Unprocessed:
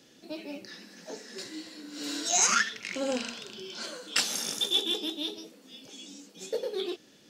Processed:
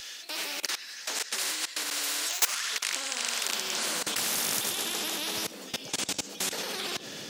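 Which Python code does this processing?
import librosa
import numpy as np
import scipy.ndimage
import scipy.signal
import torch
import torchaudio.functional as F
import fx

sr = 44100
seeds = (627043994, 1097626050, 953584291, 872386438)

y = 10.0 ** (-14.0 / 20.0) * np.tanh(x / 10.0 ** (-14.0 / 20.0))
y = y + 10.0 ** (-14.5 / 20.0) * np.pad(y, (int(77 * sr / 1000.0), 0))[:len(y)]
y = fx.level_steps(y, sr, step_db=23)
y = fx.filter_sweep_highpass(y, sr, from_hz=1500.0, to_hz=100.0, start_s=3.41, end_s=4.17, q=0.78)
y = fx.spectral_comp(y, sr, ratio=4.0)
y = y * librosa.db_to_amplitude(6.5)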